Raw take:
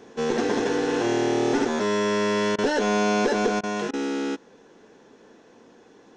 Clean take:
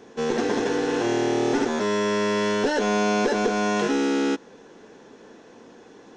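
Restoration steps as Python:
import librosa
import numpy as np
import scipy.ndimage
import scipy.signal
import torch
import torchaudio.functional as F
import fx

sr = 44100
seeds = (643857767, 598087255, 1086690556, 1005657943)

y = fx.fix_interpolate(x, sr, at_s=(2.56, 3.61, 3.91), length_ms=23.0)
y = fx.fix_level(y, sr, at_s=3.59, step_db=4.5)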